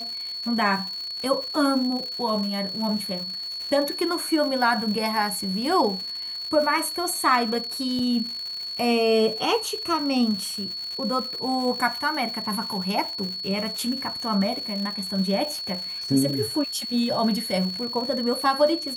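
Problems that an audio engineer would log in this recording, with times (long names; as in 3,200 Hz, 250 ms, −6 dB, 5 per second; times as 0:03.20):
surface crackle 220 per second −31 dBFS
whistle 4,400 Hz −30 dBFS
0:07.99: drop-out 3.9 ms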